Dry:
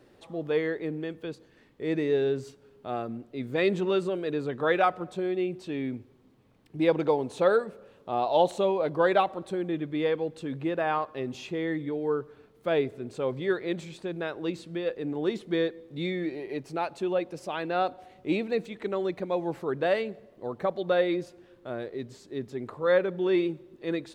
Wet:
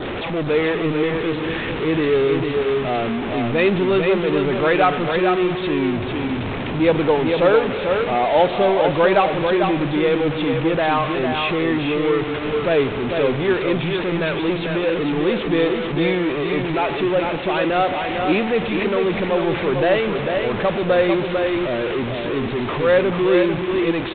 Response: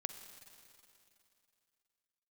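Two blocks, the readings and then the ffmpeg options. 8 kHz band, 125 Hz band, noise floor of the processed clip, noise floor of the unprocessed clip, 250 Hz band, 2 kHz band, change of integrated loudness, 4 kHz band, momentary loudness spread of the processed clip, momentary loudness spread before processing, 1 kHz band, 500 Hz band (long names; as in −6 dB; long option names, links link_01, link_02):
can't be measured, +13.0 dB, −25 dBFS, −59 dBFS, +11.0 dB, +12.5 dB, +10.0 dB, +13.5 dB, 6 LU, 13 LU, +10.0 dB, +9.5 dB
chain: -filter_complex "[0:a]aeval=exprs='val(0)+0.5*0.0531*sgn(val(0))':channel_layout=same,adynamicequalizer=threshold=0.00447:dfrequency=2400:dqfactor=2.7:tfrequency=2400:tqfactor=2.7:attack=5:release=100:ratio=0.375:range=2:mode=boostabove:tftype=bell,asplit=2[link_01][link_02];[link_02]aecho=0:1:447:0.562[link_03];[link_01][link_03]amix=inputs=2:normalize=0,acrusher=bits=6:mode=log:mix=0:aa=0.000001,volume=5dB" -ar 8000 -c:a adpcm_g726 -b:a 24k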